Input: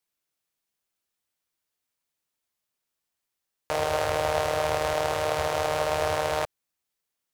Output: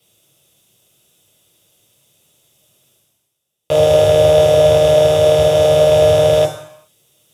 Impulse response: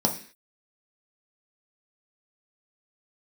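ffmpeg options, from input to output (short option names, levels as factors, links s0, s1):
-filter_complex "[0:a]highshelf=f=7100:g=7.5,areverse,acompressor=mode=upward:threshold=0.00631:ratio=2.5,areverse[s0];[1:a]atrim=start_sample=2205,asetrate=27783,aresample=44100[s1];[s0][s1]afir=irnorm=-1:irlink=0,volume=0.501"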